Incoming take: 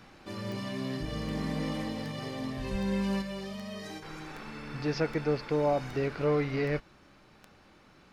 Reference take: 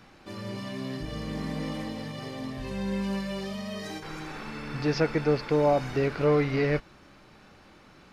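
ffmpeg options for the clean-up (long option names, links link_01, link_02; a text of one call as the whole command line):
ffmpeg -i in.wav -filter_complex "[0:a]adeclick=threshold=4,asplit=3[link_01][link_02][link_03];[link_01]afade=type=out:start_time=2.71:duration=0.02[link_04];[link_02]highpass=frequency=140:width=0.5412,highpass=frequency=140:width=1.3066,afade=type=in:start_time=2.71:duration=0.02,afade=type=out:start_time=2.83:duration=0.02[link_05];[link_03]afade=type=in:start_time=2.83:duration=0.02[link_06];[link_04][link_05][link_06]amix=inputs=3:normalize=0,asetnsamples=nb_out_samples=441:pad=0,asendcmd='3.22 volume volume 4.5dB',volume=0dB" out.wav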